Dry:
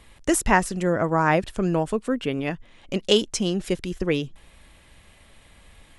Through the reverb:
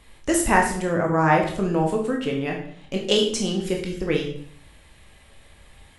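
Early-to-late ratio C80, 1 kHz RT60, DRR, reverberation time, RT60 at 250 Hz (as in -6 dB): 10.0 dB, 0.55 s, 0.0 dB, 0.60 s, 0.60 s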